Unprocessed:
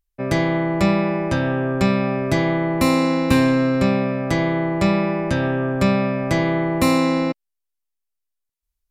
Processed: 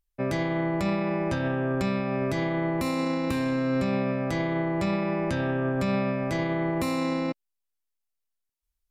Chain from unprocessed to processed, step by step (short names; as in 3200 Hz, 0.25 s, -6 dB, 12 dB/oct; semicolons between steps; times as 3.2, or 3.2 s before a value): limiter -16.5 dBFS, peak gain reduction 11.5 dB; gain -2.5 dB